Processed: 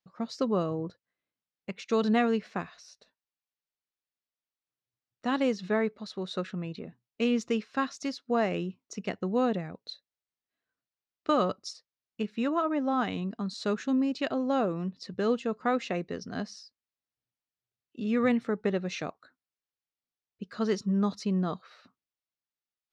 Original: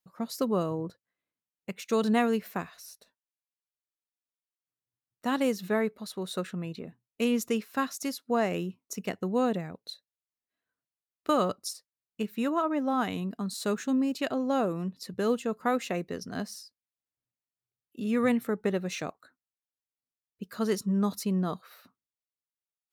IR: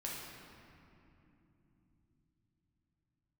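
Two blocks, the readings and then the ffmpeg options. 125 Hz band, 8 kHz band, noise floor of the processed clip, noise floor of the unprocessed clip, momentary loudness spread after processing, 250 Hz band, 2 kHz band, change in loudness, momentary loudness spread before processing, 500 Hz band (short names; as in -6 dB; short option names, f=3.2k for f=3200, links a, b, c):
0.0 dB, -7.0 dB, under -85 dBFS, under -85 dBFS, 14 LU, 0.0 dB, 0.0 dB, 0.0 dB, 14 LU, 0.0 dB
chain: -af "lowpass=f=5.8k:w=0.5412,lowpass=f=5.8k:w=1.3066,bandreject=f=960:w=28"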